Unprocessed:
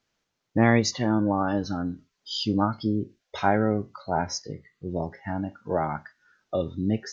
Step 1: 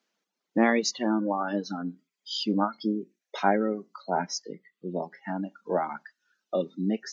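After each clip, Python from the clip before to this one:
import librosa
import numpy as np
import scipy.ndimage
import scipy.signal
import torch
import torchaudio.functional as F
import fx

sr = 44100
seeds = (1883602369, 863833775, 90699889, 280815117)

y = scipy.signal.sosfilt(scipy.signal.ellip(4, 1.0, 40, 180.0, 'highpass', fs=sr, output='sos'), x)
y = fx.dereverb_blind(y, sr, rt60_s=1.0)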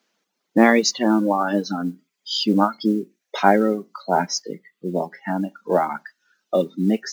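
y = fx.mod_noise(x, sr, seeds[0], snr_db=34)
y = y * 10.0 ** (8.0 / 20.0)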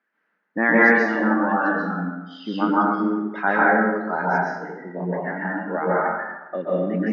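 y = fx.lowpass_res(x, sr, hz=1700.0, q=4.9)
y = fx.rev_plate(y, sr, seeds[1], rt60_s=1.1, hf_ratio=0.6, predelay_ms=115, drr_db=-7.0)
y = y * 10.0 ** (-10.5 / 20.0)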